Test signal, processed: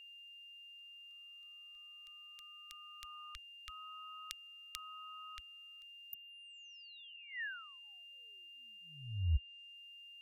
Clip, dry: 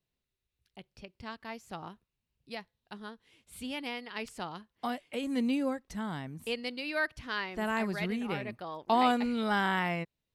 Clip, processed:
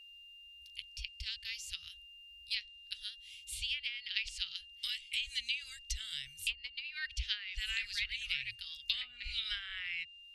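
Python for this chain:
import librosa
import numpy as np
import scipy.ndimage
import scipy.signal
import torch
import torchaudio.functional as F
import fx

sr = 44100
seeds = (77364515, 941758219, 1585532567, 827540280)

y = scipy.signal.sosfilt(scipy.signal.cheby2(4, 60, [180.0, 1000.0], 'bandstop', fs=sr, output='sos'), x)
y = fx.env_lowpass_down(y, sr, base_hz=330.0, full_db=-36.0)
y = y + 10.0 ** (-66.0 / 20.0) * np.sin(2.0 * np.pi * 2800.0 * np.arange(len(y)) / sr)
y = F.gain(torch.from_numpy(y), 13.5).numpy()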